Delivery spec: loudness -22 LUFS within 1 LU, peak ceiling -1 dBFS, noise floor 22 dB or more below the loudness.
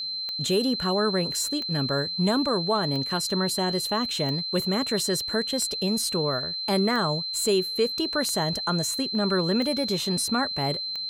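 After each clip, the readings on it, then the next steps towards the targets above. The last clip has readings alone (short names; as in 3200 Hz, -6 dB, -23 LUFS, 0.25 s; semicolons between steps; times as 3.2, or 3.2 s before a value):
clicks 9; steady tone 4100 Hz; tone level -29 dBFS; loudness -25.0 LUFS; peak -12.5 dBFS; loudness target -22.0 LUFS
-> de-click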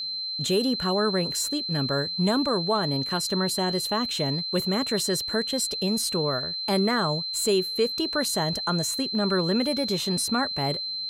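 clicks 0; steady tone 4100 Hz; tone level -29 dBFS
-> notch 4100 Hz, Q 30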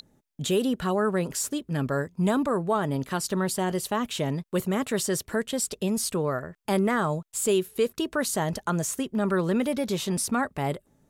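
steady tone none; loudness -27.0 LUFS; peak -13.5 dBFS; loudness target -22.0 LUFS
-> gain +5 dB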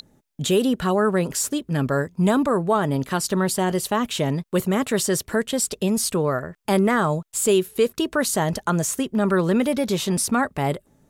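loudness -22.0 LUFS; peak -8.5 dBFS; noise floor -64 dBFS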